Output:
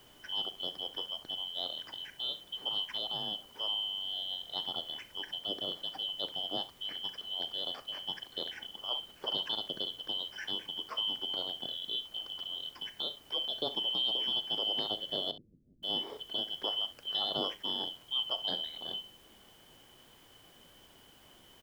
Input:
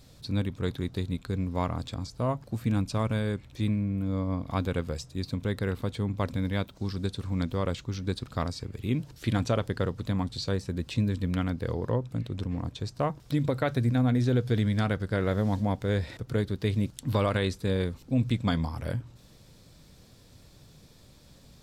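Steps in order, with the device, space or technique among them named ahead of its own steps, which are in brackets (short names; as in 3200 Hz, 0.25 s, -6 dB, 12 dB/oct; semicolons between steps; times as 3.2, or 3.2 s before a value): split-band scrambled radio (four-band scrambler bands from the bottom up 2413; BPF 360–3200 Hz; white noise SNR 25 dB); 15.31–15.83 inverse Chebyshev low-pass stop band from 1100 Hz, stop band 70 dB; tilt shelf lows +8.5 dB, about 1100 Hz; early reflections 38 ms -15.5 dB, 66 ms -16 dB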